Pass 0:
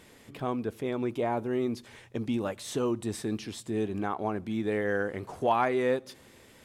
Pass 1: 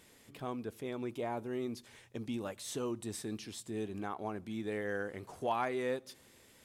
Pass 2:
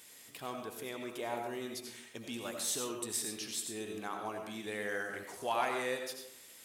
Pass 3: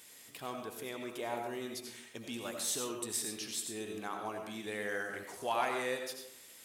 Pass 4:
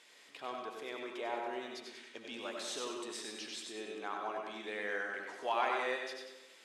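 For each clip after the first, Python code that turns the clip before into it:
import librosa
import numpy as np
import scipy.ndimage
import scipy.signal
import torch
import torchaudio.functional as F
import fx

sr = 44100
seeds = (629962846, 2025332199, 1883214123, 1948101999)

y1 = fx.high_shelf(x, sr, hz=3800.0, db=7.5)
y1 = F.gain(torch.from_numpy(y1), -8.5).numpy()
y2 = fx.tilt_eq(y1, sr, slope=3.0)
y2 = fx.rev_freeverb(y2, sr, rt60_s=0.7, hf_ratio=0.55, predelay_ms=50, drr_db=3.0)
y3 = y2
y4 = fx.bandpass_edges(y3, sr, low_hz=360.0, high_hz=4300.0)
y4 = fx.echo_feedback(y4, sr, ms=96, feedback_pct=45, wet_db=-6.5)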